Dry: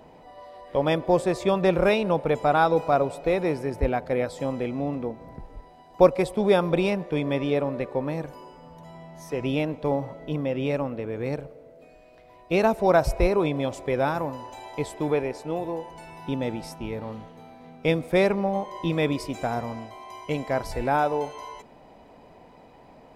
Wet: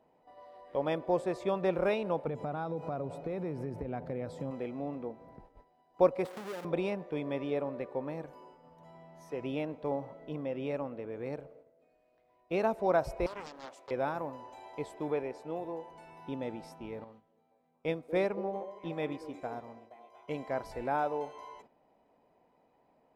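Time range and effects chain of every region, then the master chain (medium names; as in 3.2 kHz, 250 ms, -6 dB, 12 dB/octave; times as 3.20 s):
2.27–4.51 s: peaking EQ 130 Hz +14.5 dB 2.3 oct + compression 12:1, threshold -22 dBFS
6.25–6.65 s: square wave that keeps the level + high-pass 220 Hz + compression 3:1, threshold -32 dBFS
13.26–13.91 s: high-pass 1.4 kHz 6 dB/octave + loudspeaker Doppler distortion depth 0.95 ms
17.04–20.28 s: repeats whose band climbs or falls 234 ms, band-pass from 380 Hz, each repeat 0.7 oct, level -6 dB + upward expansion, over -36 dBFS
whole clip: bass shelf 140 Hz -12 dB; gate -48 dBFS, range -9 dB; treble shelf 2.5 kHz -9 dB; trim -7 dB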